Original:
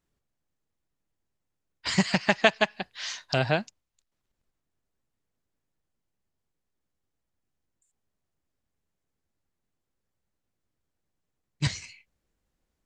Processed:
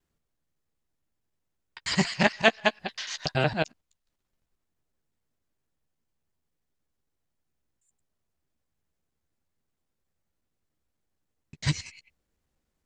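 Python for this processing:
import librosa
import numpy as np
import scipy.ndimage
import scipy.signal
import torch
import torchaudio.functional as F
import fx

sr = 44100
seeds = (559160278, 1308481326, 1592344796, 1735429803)

y = fx.local_reverse(x, sr, ms=93.0)
y = fx.doubler(y, sr, ms=13.0, db=-11.0)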